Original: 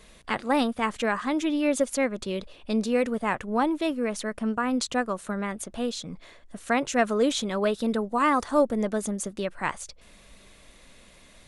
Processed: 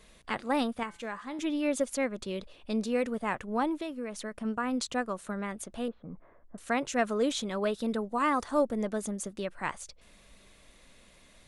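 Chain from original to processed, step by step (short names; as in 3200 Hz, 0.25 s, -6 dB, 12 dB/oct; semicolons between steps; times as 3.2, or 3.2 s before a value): 0.83–1.39 resonator 170 Hz, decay 0.54 s, harmonics all, mix 60%; 3.74–4.45 compressor, threshold -28 dBFS, peak gain reduction 6.5 dB; 5.88–6.58 LPF 1400 Hz 24 dB/oct; gain -5 dB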